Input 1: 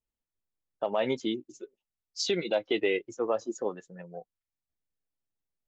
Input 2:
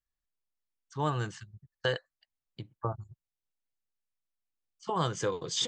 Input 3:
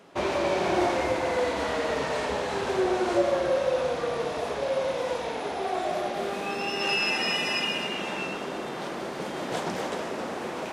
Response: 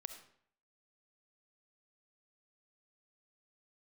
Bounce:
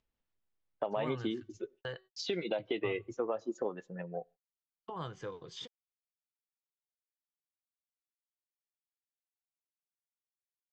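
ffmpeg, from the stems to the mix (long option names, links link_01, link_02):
-filter_complex "[0:a]acompressor=threshold=-34dB:ratio=6,volume=2.5dB,asplit=2[link_01][link_02];[link_02]volume=-19.5dB[link_03];[1:a]bandreject=frequency=377.6:width_type=h:width=4,bandreject=frequency=755.2:width_type=h:width=4,bandreject=frequency=1132.8:width_type=h:width=4,bandreject=frequency=1510.4:width_type=h:width=4,bandreject=frequency=1888:width_type=h:width=4,bandreject=frequency=2265.6:width_type=h:width=4,bandreject=frequency=2643.2:width_type=h:width=4,bandreject=frequency=3020.8:width_type=h:width=4,bandreject=frequency=3398.4:width_type=h:width=4,bandreject=frequency=3776:width_type=h:width=4,bandreject=frequency=4153.6:width_type=h:width=4,bandreject=frequency=4531.2:width_type=h:width=4,bandreject=frequency=4908.8:width_type=h:width=4,bandreject=frequency=5286.4:width_type=h:width=4,bandreject=frequency=5664:width_type=h:width=4,bandreject=frequency=6041.6:width_type=h:width=4,bandreject=frequency=6419.2:width_type=h:width=4,bandreject=frequency=6796.8:width_type=h:width=4,bandreject=frequency=7174.4:width_type=h:width=4,bandreject=frequency=7552:width_type=h:width=4,bandreject=frequency=7929.6:width_type=h:width=4,bandreject=frequency=8307.2:width_type=h:width=4,bandreject=frequency=8684.8:width_type=h:width=4,bandreject=frequency=9062.4:width_type=h:width=4,bandreject=frequency=9440:width_type=h:width=4,bandreject=frequency=9817.6:width_type=h:width=4,bandreject=frequency=10195.2:width_type=h:width=4,bandreject=frequency=10572.8:width_type=h:width=4,bandreject=frequency=10950.4:width_type=h:width=4,bandreject=frequency=11328:width_type=h:width=4,bandreject=frequency=11705.6:width_type=h:width=4,bandreject=frequency=12083.2:width_type=h:width=4,bandreject=frequency=12460.8:width_type=h:width=4,bandreject=frequency=12838.4:width_type=h:width=4,volume=-11.5dB,asplit=2[link_04][link_05];[link_05]volume=-21.5dB[link_06];[3:a]atrim=start_sample=2205[link_07];[link_03][link_06]amix=inputs=2:normalize=0[link_08];[link_08][link_07]afir=irnorm=-1:irlink=0[link_09];[link_01][link_04][link_09]amix=inputs=3:normalize=0,agate=range=-54dB:threshold=-55dB:ratio=16:detection=peak,lowpass=3500,acompressor=mode=upward:threshold=-44dB:ratio=2.5"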